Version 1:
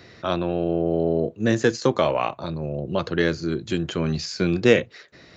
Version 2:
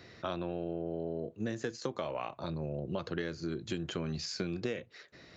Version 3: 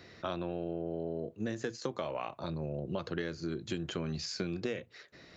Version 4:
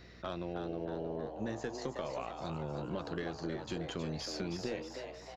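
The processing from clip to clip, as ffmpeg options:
ffmpeg -i in.wav -af "acompressor=threshold=-25dB:ratio=12,volume=-6.5dB" out.wav
ffmpeg -i in.wav -af "bandreject=frequency=60:width_type=h:width=6,bandreject=frequency=120:width_type=h:width=6" out.wav
ffmpeg -i in.wav -filter_complex "[0:a]aeval=exprs='(tanh(15.8*val(0)+0.3)-tanh(0.3))/15.8':channel_layout=same,asplit=8[link_01][link_02][link_03][link_04][link_05][link_06][link_07][link_08];[link_02]adelay=316,afreqshift=140,volume=-7dB[link_09];[link_03]adelay=632,afreqshift=280,volume=-12.2dB[link_10];[link_04]adelay=948,afreqshift=420,volume=-17.4dB[link_11];[link_05]adelay=1264,afreqshift=560,volume=-22.6dB[link_12];[link_06]adelay=1580,afreqshift=700,volume=-27.8dB[link_13];[link_07]adelay=1896,afreqshift=840,volume=-33dB[link_14];[link_08]adelay=2212,afreqshift=980,volume=-38.2dB[link_15];[link_01][link_09][link_10][link_11][link_12][link_13][link_14][link_15]amix=inputs=8:normalize=0,aeval=exprs='val(0)+0.00178*(sin(2*PI*60*n/s)+sin(2*PI*2*60*n/s)/2+sin(2*PI*3*60*n/s)/3+sin(2*PI*4*60*n/s)/4+sin(2*PI*5*60*n/s)/5)':channel_layout=same,volume=-2dB" out.wav

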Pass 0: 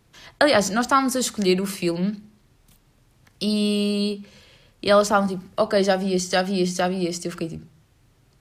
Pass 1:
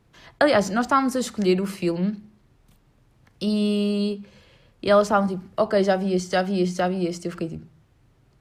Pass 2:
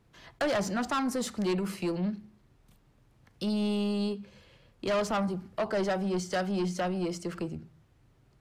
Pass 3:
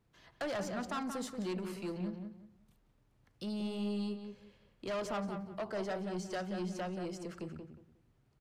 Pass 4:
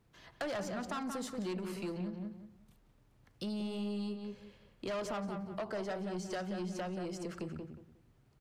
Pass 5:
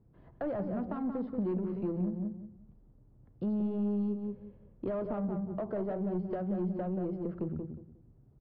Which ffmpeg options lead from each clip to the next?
ffmpeg -i in.wav -af "highshelf=frequency=3000:gain=-9.5" out.wav
ffmpeg -i in.wav -af "asoftclip=type=tanh:threshold=-20.5dB,volume=-4dB" out.wav
ffmpeg -i in.wav -filter_complex "[0:a]asplit=2[link_01][link_02];[link_02]adelay=180,lowpass=frequency=2300:poles=1,volume=-6dB,asplit=2[link_03][link_04];[link_04]adelay=180,lowpass=frequency=2300:poles=1,volume=0.25,asplit=2[link_05][link_06];[link_06]adelay=180,lowpass=frequency=2300:poles=1,volume=0.25[link_07];[link_01][link_03][link_05][link_07]amix=inputs=4:normalize=0,volume=-9dB" out.wav
ffmpeg -i in.wav -af "acompressor=threshold=-41dB:ratio=3,volume=4dB" out.wav
ffmpeg -i in.wav -af "adynamicsmooth=sensitivity=0.5:basefreq=530,aresample=11025,aresample=44100,volume=7.5dB" out.wav

